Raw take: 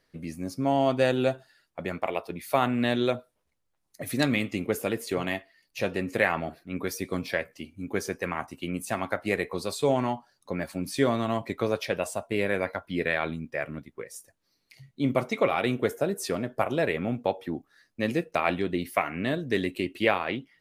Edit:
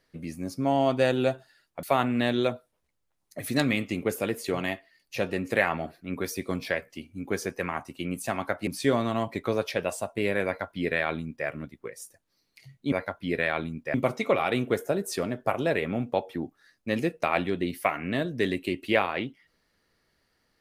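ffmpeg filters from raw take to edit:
-filter_complex "[0:a]asplit=5[a][b][c][d][e];[a]atrim=end=1.832[f];[b]atrim=start=2.458:end=9.302[g];[c]atrim=start=10.808:end=15.062[h];[d]atrim=start=12.588:end=13.612[i];[e]atrim=start=15.058[j];[f][g]acrossfade=d=0.004:c1=hsin:c2=hsin[k];[k][h]acrossfade=d=0.004:c1=hsin:c2=hsin[l];[l][i]acrossfade=d=0.004:c1=hsin:c2=hsin[m];[m][j]acrossfade=d=0.004:c1=hsin:c2=hsin"

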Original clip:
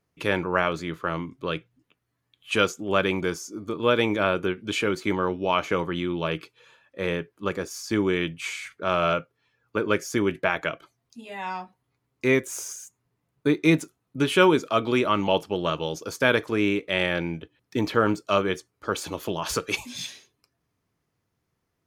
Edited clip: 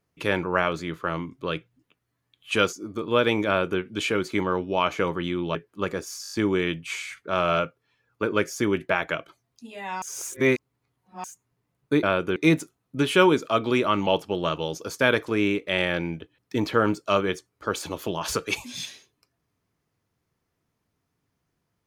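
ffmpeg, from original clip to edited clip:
-filter_complex "[0:a]asplit=12[a][b][c][d][e][f][g][h][i][j][k][l];[a]atrim=end=2.732[m];[b]atrim=start=3.448:end=6.272[n];[c]atrim=start=7.188:end=7.882[o];[d]atrim=start=7.858:end=7.882[p];[e]atrim=start=7.858:end=7.882[q];[f]atrim=start=7.858:end=7.882[r];[g]atrim=start=7.858:end=7.882[s];[h]atrim=start=7.858:end=11.562[t];[i]atrim=start=11.558:end=12.782,asetpts=PTS-STARTPTS,areverse[u];[j]atrim=start=12.778:end=13.572[v];[k]atrim=start=4.188:end=4.522[w];[l]atrim=start=13.568[x];[m][n]acrossfade=d=0.004:c1=hsin:c2=hsin[y];[y][o]acrossfade=d=0.004:c1=hsin:c2=hsin[z];[z][p]acrossfade=d=0.004:c1=hsin:c2=hsin[aa];[aa][q]acrossfade=d=0.004:c1=hsin:c2=hsin[ab];[ab][r]acrossfade=d=0.004:c1=hsin:c2=hsin[ac];[ac][s]acrossfade=d=0.004:c1=hsin:c2=hsin[ad];[ad][t]acrossfade=d=0.004:c1=hsin:c2=hsin[ae];[ae][u]acrossfade=d=0.004:c1=hsin:c2=hsin[af];[af][v]acrossfade=d=0.004:c1=hsin:c2=hsin[ag];[ag][w]acrossfade=d=0.004:c1=hsin:c2=hsin[ah];[ah][x]acrossfade=d=0.004:c1=hsin:c2=hsin"

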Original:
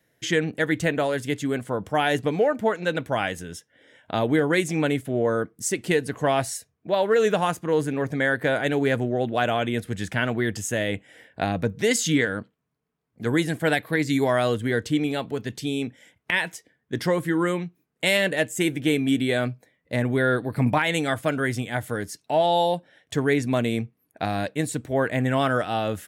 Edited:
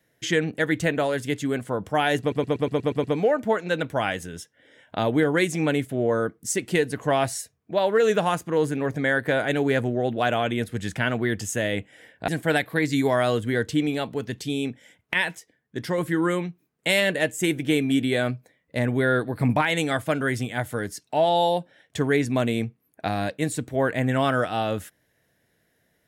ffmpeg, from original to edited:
-filter_complex "[0:a]asplit=11[a][b][c][d][e][f][g][h][i][j][k];[a]atrim=end=2.322[l];[b]atrim=start=2.198:end=2.322[m];[c]atrim=start=2.198:end=2.322[n];[d]atrim=start=2.198:end=2.322[o];[e]atrim=start=2.198:end=2.322[p];[f]atrim=start=2.198:end=2.322[q];[g]atrim=start=2.198:end=2.322[r];[h]atrim=start=2.198:end=11.442[s];[i]atrim=start=13.448:end=16.522[t];[j]atrim=start=16.518:end=17.152,asetpts=PTS-STARTPTS,volume=-3.5dB[u];[k]atrim=start=17.148[v];[l][m]acrossfade=d=0.004:c1=hsin:c2=hsin[w];[w][n]acrossfade=d=0.004:c1=hsin:c2=hsin[x];[x][o]acrossfade=d=0.004:c1=hsin:c2=hsin[y];[y][p]acrossfade=d=0.004:c1=hsin:c2=hsin[z];[z][q]acrossfade=d=0.004:c1=hsin:c2=hsin[aa];[aa][r]acrossfade=d=0.004:c1=hsin:c2=hsin[ab];[ab][s]acrossfade=d=0.004:c1=hsin:c2=hsin[ac];[ac][t]acrossfade=d=0.004:c1=hsin:c2=hsin[ad];[ad][u]acrossfade=d=0.004:c1=hsin:c2=hsin[ae];[ae][v]acrossfade=d=0.004:c1=hsin:c2=hsin"

